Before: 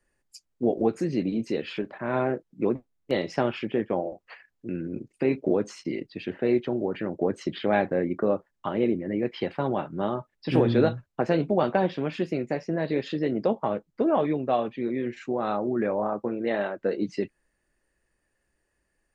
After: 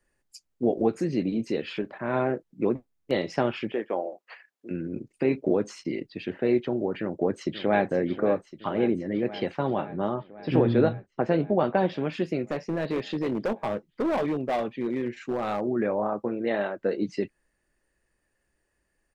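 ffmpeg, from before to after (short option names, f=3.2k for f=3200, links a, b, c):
-filter_complex "[0:a]asettb=1/sr,asplit=3[a][b][c];[a]atrim=end=3.724[d];[b]atrim=start=3.72:end=4.71,asetpts=PTS-STARTPTS,afade=t=in:d=0.004:c=qsin,afade=t=out:st=0.986:d=0.004:c=qsin,highpass=380[e];[c]atrim=start=4.706[f];[d][e]acrossfade=d=0.004:c1=hsin:c2=qsin[g];[g][f]acrossfade=d=0.004:c1=qsin:c2=hsin,asplit=2[h][i];[i]afade=t=in:st=7.01:d=0.01,afade=t=out:st=7.88:d=0.01,aecho=0:1:530|1060|1590|2120|2650|3180|3710|4240|4770|5300|5830|6360:0.237137|0.177853|0.13339|0.100042|0.0750317|0.0562738|0.0422054|0.031654|0.0237405|0.0178054|0.013354|0.0100155[j];[h][j]amix=inputs=2:normalize=0,asettb=1/sr,asplit=3[k][l][m];[k]atrim=end=9.854[n];[l]atrim=start=9.85:end=11.77,asetpts=PTS-STARTPTS,afade=t=in:d=0.004:c=qsin,afade=t=out:st=1.916:d=0.004:c=qsin,lowpass=f=2.4k:p=1[o];[m]atrim=start=11.766[p];[n][o]acrossfade=d=0.004:c1=hsin:c2=qsin[q];[q][p]acrossfade=d=0.004:c1=qsin:c2=hsin,asettb=1/sr,asplit=3[r][s][t];[r]atrim=end=12.484[u];[s]atrim=start=12.48:end=15.61,asetpts=PTS-STARTPTS,afade=t=in:d=0.004:c=qsin,afade=t=out:st=3.126:d=0.004:c=qsin,asoftclip=type=hard:threshold=-22.5dB[v];[t]atrim=start=15.606[w];[u][v]acrossfade=d=0.004:c1=hsin:c2=qsin[x];[x][w]acrossfade=d=0.004:c1=qsin:c2=hsin"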